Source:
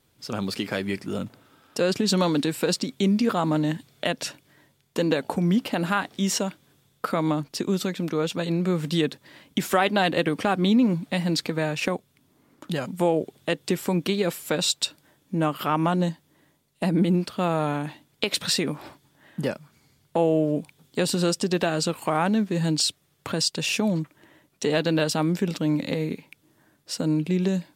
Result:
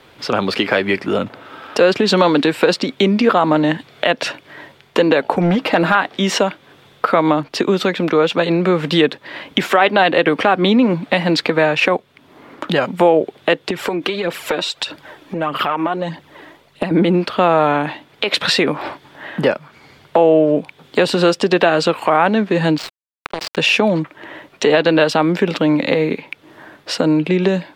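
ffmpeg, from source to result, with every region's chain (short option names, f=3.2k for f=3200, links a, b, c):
-filter_complex "[0:a]asettb=1/sr,asplit=3[a][b][c];[a]atrim=end=5.394[d];[b]atrim=start=5.39:end=5.95,asetpts=PTS-STARTPTS,afade=t=in:d=0.004:c=qsin,afade=t=out:st=0.556:d=0.004:c=qsin,bandreject=f=3k:w=12,aecho=1:1:6.3:0.44,atrim=end_sample=24696,asoftclip=type=hard:threshold=-17dB[e];[c]atrim=start=5.946[f];[d][e]acrossfade=d=0.004:c1=hsin:c2=qsin[g];[g][f]acrossfade=d=0.004:c1=qsin:c2=hsin,asettb=1/sr,asplit=3[h][i][j];[h]atrim=end=13.684[k];[i]atrim=start=13.68:end=16.91,asetpts=PTS-STARTPTS,afade=t=in:d=0.004:c=qsin,afade=t=out:st=3.226:d=0.004:c=qsin,acompressor=threshold=-29dB:ratio=12:attack=3.2:release=140:knee=1:detection=peak,aphaser=in_gain=1:out_gain=1:delay=3.3:decay=0.48:speed=1.6:type=triangular[l];[j]atrim=start=16.906[m];[k][l]acrossfade=d=0.004:c1=hsin:c2=qsin[n];[n][m]acrossfade=d=0.004:c1=qsin:c2=hsin,asettb=1/sr,asplit=3[o][p][q];[o]atrim=end=22.784[r];[p]atrim=start=22.78:end=23.57,asetpts=PTS-STARTPTS,afade=t=in:d=0.004:c=qsin,afade=t=out:st=0.786:d=0.004:c=qsin,bandreject=f=50:t=h:w=6,bandreject=f=100:t=h:w=6,bandreject=f=150:t=h:w=6,bandreject=f=200:t=h:w=6,bandreject=f=250:t=h:w=6,bandreject=f=300:t=h:w=6,bandreject=f=350:t=h:w=6,bandreject=f=400:t=h:w=6,acompressor=threshold=-55dB:ratio=1.5:attack=3.2:release=140:knee=1:detection=peak,acrusher=bits=4:mix=0:aa=0.5[s];[q]atrim=start=23.566[t];[r][s]acrossfade=d=0.004:c1=hsin:c2=qsin[u];[u][t]acrossfade=d=0.004:c1=qsin:c2=hsin,acrossover=split=350 3700:gain=0.251 1 0.1[v][w][x];[v][w][x]amix=inputs=3:normalize=0,acompressor=threshold=-54dB:ratio=1.5,alimiter=level_in=25.5dB:limit=-1dB:release=50:level=0:latency=1,volume=-1dB"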